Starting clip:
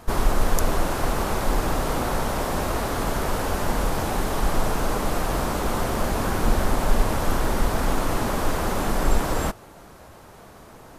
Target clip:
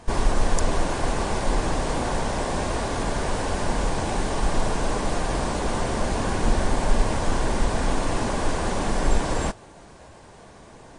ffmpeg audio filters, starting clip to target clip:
ffmpeg -i in.wav -af "bandreject=frequency=1300:width=7.4" -ar 22050 -c:a libmp3lame -b:a 40k out.mp3

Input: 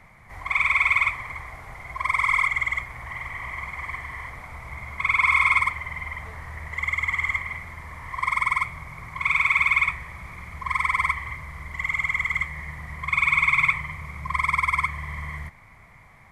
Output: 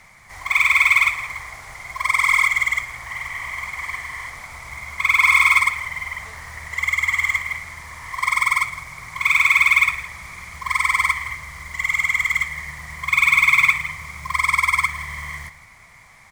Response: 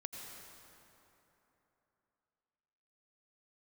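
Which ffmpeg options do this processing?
-af "lowpass=7700,bass=frequency=250:gain=1,treble=frequency=4000:gain=14,aecho=1:1:164:0.168,acrusher=bits=6:mode=log:mix=0:aa=0.000001,tiltshelf=frequency=640:gain=-4.5"

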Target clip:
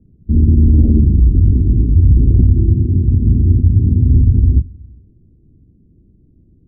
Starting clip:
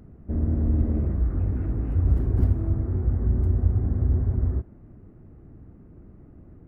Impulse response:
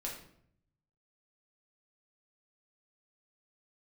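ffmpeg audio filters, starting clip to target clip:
-filter_complex "[0:a]asettb=1/sr,asplit=3[link_01][link_02][link_03];[link_01]atrim=end=2.704[link_04];[link_02]atrim=start=2.7:end=4.16,asetpts=PTS-STARTPTS,afade=type=in:duration=0.004:curve=qsin,afade=type=out:start_time=1.456:duration=0.004:curve=qsin,highpass=76[link_05];[link_03]atrim=start=4.156[link_06];[link_04][link_05]acrossfade=duration=0.004:curve1=hsin:curve2=qsin[link_07];[link_07][link_06]acrossfade=duration=0.004:curve1=qsin:curve2=hsin,afwtdn=0.0562,asettb=1/sr,asplit=3[link_08][link_09][link_10];[link_08]atrim=end=0.764[link_11];[link_09]atrim=start=0.76:end=2.07,asetpts=PTS-STARTPTS,afade=type=in:duration=0.004:curve=qsin,afade=type=out:start_time=1.306:duration=0.004:curve=qsin,lowpass=frequency=1200:width_type=q:width=2.9[link_12];[link_10]atrim=start=2.066[link_13];[link_11][link_12]acrossfade=duration=0.004:curve1=hsin:curve2=qsin[link_14];[link_14][link_13]acrossfade=duration=0.004:curve1=qsin:curve2=hsin,acrossover=split=180|410[link_15][link_16][link_17];[link_17]acrusher=bits=4:mix=0:aa=0.000001[link_18];[link_15][link_16][link_18]amix=inputs=3:normalize=0,aeval=exprs='0.355*(cos(1*acos(clip(val(0)/0.355,-1,1)))-cos(1*PI/2))+0.00398*(cos(6*acos(clip(val(0)/0.355,-1,1)))-cos(6*PI/2))':channel_layout=same,asplit=2[link_19][link_20];[1:a]atrim=start_sample=2205[link_21];[link_20][link_21]afir=irnorm=-1:irlink=0,volume=-17dB[link_22];[link_19][link_22]amix=inputs=2:normalize=0,alimiter=level_in=15dB:limit=-1dB:release=50:level=0:latency=1,volume=-1dB"

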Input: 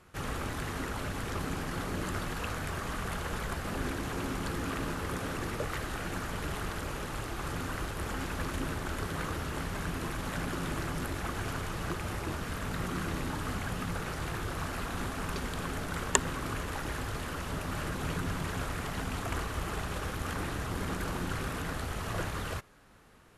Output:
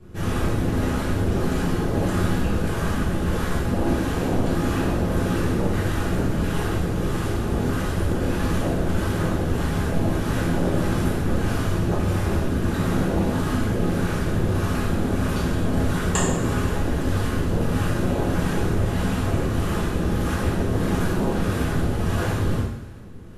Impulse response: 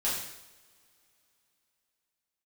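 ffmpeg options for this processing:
-filter_complex "[0:a]acrossover=split=500[link_01][link_02];[link_01]aeval=exprs='val(0)*(1-0.5/2+0.5/2*cos(2*PI*1.6*n/s))':channel_layout=same[link_03];[link_02]aeval=exprs='val(0)*(1-0.5/2-0.5/2*cos(2*PI*1.6*n/s))':channel_layout=same[link_04];[link_03][link_04]amix=inputs=2:normalize=0,acrossover=split=410[link_05][link_06];[link_05]aeval=exprs='0.0562*sin(PI/2*3.98*val(0)/0.0562)':channel_layout=same[link_07];[link_07][link_06]amix=inputs=2:normalize=0[link_08];[1:a]atrim=start_sample=2205[link_09];[link_08][link_09]afir=irnorm=-1:irlink=0"

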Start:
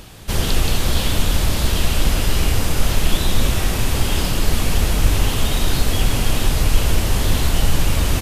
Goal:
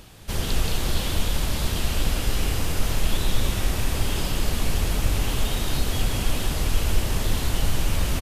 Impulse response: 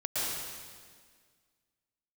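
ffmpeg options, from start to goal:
-af "aecho=1:1:212:0.473,volume=-7dB"

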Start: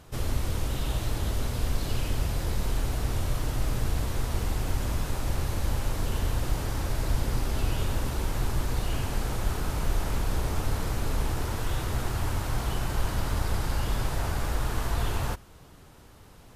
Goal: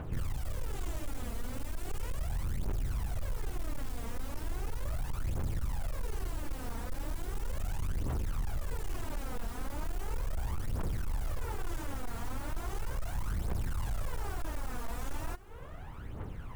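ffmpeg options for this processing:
ffmpeg -i in.wav -filter_complex "[0:a]bass=frequency=250:gain=0,treble=frequency=4000:gain=-10,acrossover=split=3400[link_01][link_02];[link_01]acompressor=threshold=-41dB:ratio=4[link_03];[link_02]aeval=exprs='abs(val(0))':channel_layout=same[link_04];[link_03][link_04]amix=inputs=2:normalize=0,aphaser=in_gain=1:out_gain=1:delay=4.4:decay=0.65:speed=0.37:type=triangular,volume=32dB,asoftclip=hard,volume=-32dB,volume=3.5dB" out.wav

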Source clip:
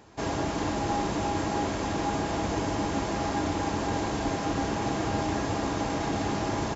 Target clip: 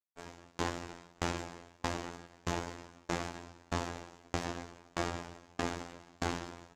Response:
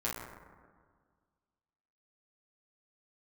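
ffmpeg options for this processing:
-af "aeval=exprs='0.168*(cos(1*acos(clip(val(0)/0.168,-1,1)))-cos(1*PI/2))+0.0211*(cos(3*acos(clip(val(0)/0.168,-1,1)))-cos(3*PI/2))+0.015*(cos(7*acos(clip(val(0)/0.168,-1,1)))-cos(7*PI/2))':channel_layout=same,alimiter=limit=-22dB:level=0:latency=1:release=15,afftfilt=real='hypot(re,im)*cos(PI*b)':imag='0':win_size=2048:overlap=0.75,bandreject=frequency=50:width_type=h:width=6,bandreject=frequency=100:width_type=h:width=6,bandreject=frequency=150:width_type=h:width=6,bandreject=frequency=200:width_type=h:width=6,bandreject=frequency=250:width_type=h:width=6,aeval=exprs='val(0)*pow(10,-35*if(lt(mod(1.6*n/s,1),2*abs(1.6)/1000),1-mod(1.6*n/s,1)/(2*abs(1.6)/1000),(mod(1.6*n/s,1)-2*abs(1.6)/1000)/(1-2*abs(1.6)/1000))/20)':channel_layout=same,volume=8.5dB"

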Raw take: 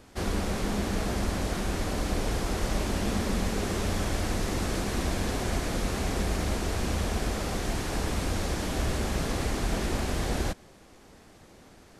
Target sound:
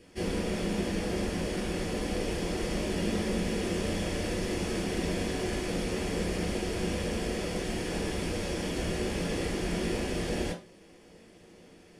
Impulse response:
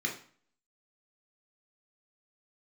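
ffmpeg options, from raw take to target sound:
-filter_complex "[1:a]atrim=start_sample=2205,afade=type=out:start_time=0.22:duration=0.01,atrim=end_sample=10143,asetrate=61740,aresample=44100[link_01];[0:a][link_01]afir=irnorm=-1:irlink=0,volume=-4dB"

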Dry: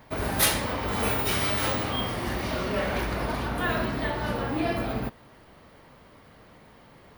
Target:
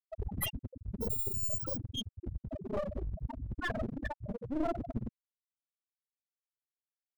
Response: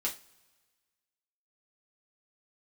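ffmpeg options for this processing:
-af "afftfilt=real='re*gte(hypot(re,im),0.224)':imag='im*gte(hypot(re,im),0.224)':win_size=1024:overlap=0.75,aeval=exprs='clip(val(0),-1,0.0126)':channel_layout=same"

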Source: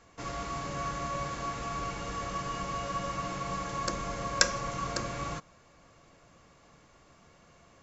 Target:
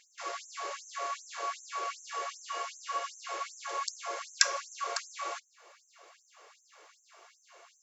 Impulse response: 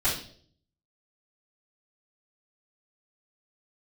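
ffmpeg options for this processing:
-filter_complex "[0:a]asplit=2[link_01][link_02];[link_02]acompressor=threshold=-49dB:ratio=6,volume=-1.5dB[link_03];[link_01][link_03]amix=inputs=2:normalize=0,afftfilt=real='re*gte(b*sr/1024,320*pow(5900/320,0.5+0.5*sin(2*PI*2.6*pts/sr)))':imag='im*gte(b*sr/1024,320*pow(5900/320,0.5+0.5*sin(2*PI*2.6*pts/sr)))':win_size=1024:overlap=0.75"

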